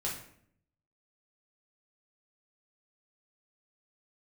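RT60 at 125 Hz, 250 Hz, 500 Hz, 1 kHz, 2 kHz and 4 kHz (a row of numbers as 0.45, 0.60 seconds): 1.0, 0.85, 0.70, 0.55, 0.55, 0.45 seconds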